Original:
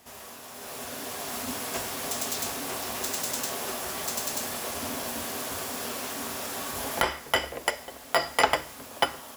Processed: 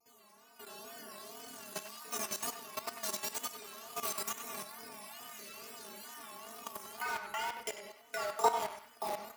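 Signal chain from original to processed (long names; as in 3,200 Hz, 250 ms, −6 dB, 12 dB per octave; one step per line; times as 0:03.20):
time-frequency cells dropped at random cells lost 38%
stiff-string resonator 210 Hz, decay 0.25 s, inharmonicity 0.008
rectangular room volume 730 cubic metres, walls furnished, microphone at 3.6 metres
tape wow and flutter 110 cents
in parallel at −3.5 dB: bit-depth reduction 6 bits, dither none
on the sum: high-pass filter 70 Hz
low-shelf EQ 180 Hz −5 dB
output level in coarse steps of 13 dB
on a send: feedback echo with a band-pass in the loop 96 ms, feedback 45%, band-pass 1,800 Hz, level −7.5 dB
0:04.05–0:04.63: on the sum: multiband upward and downward compressor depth 100%
level +2.5 dB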